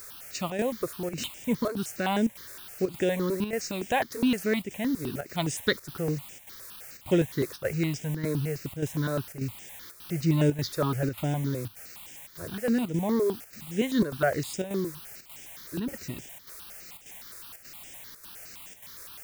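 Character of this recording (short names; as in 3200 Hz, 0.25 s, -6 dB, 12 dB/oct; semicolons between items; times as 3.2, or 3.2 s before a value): a quantiser's noise floor 8-bit, dither triangular; chopped level 1.7 Hz, depth 60%, duty 85%; notches that jump at a steady rate 9.7 Hz 810–4200 Hz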